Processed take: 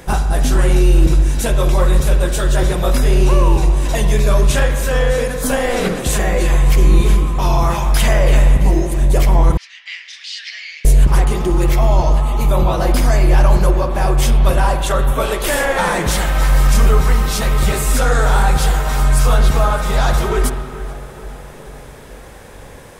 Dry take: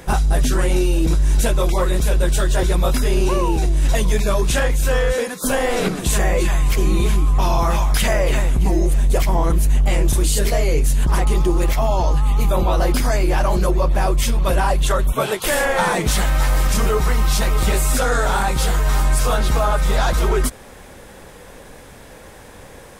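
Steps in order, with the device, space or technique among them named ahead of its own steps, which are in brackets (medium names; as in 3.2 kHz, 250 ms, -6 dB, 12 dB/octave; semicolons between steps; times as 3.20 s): dub delay into a spring reverb (filtered feedback delay 432 ms, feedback 64%, low-pass 2.3 kHz, level -15 dB; spring tank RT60 1.6 s, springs 43/50 ms, chirp 70 ms, DRR 6.5 dB); 9.57–10.85 s: Chebyshev band-pass 1.8–5.2 kHz, order 3; trim +1 dB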